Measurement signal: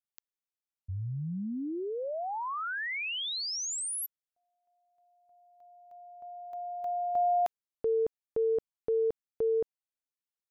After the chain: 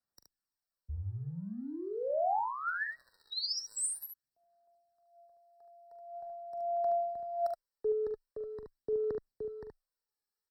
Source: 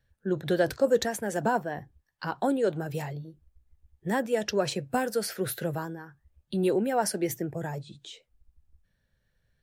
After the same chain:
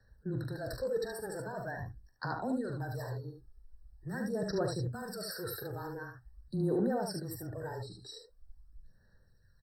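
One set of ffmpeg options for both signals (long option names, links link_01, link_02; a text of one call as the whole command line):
ffmpeg -i in.wav -filter_complex "[0:a]equalizer=frequency=6200:width_type=o:width=0.22:gain=13.5,areverse,acompressor=threshold=-36dB:ratio=6:attack=0.54:release=50:knee=6:detection=rms,areverse,afreqshift=-18,aphaser=in_gain=1:out_gain=1:delay=2.4:decay=0.58:speed=0.44:type=sinusoidal,asplit=2[link_01][link_02];[link_02]aecho=0:1:42|73:0.282|0.562[link_03];[link_01][link_03]amix=inputs=2:normalize=0,afftfilt=real='re*eq(mod(floor(b*sr/1024/1900),2),0)':imag='im*eq(mod(floor(b*sr/1024/1900),2),0)':win_size=1024:overlap=0.75" out.wav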